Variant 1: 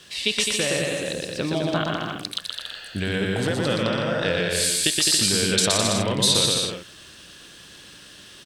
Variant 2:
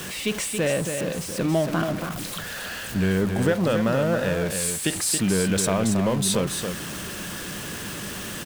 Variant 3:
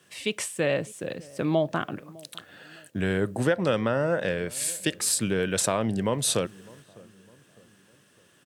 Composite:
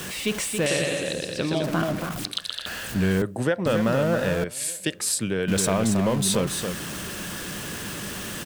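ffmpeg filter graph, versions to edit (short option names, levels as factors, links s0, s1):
-filter_complex "[0:a]asplit=2[s0][s1];[2:a]asplit=2[s2][s3];[1:a]asplit=5[s4][s5][s6][s7][s8];[s4]atrim=end=0.662[s9];[s0]atrim=start=0.658:end=1.642[s10];[s5]atrim=start=1.638:end=2.252[s11];[s1]atrim=start=2.248:end=2.662[s12];[s6]atrim=start=2.658:end=3.222[s13];[s2]atrim=start=3.218:end=3.662[s14];[s7]atrim=start=3.658:end=4.442[s15];[s3]atrim=start=4.438:end=5.482[s16];[s8]atrim=start=5.478[s17];[s9][s10]acrossfade=d=0.004:c1=hsin:c2=hsin[s18];[s18][s11]acrossfade=d=0.004:c1=hsin:c2=hsin[s19];[s19][s12]acrossfade=d=0.004:c1=hsin:c2=hsin[s20];[s20][s13]acrossfade=d=0.004:c1=hsin:c2=hsin[s21];[s21][s14]acrossfade=d=0.004:c1=hsin:c2=hsin[s22];[s22][s15]acrossfade=d=0.004:c1=hsin:c2=hsin[s23];[s23][s16]acrossfade=d=0.004:c1=hsin:c2=hsin[s24];[s24][s17]acrossfade=d=0.004:c1=hsin:c2=hsin"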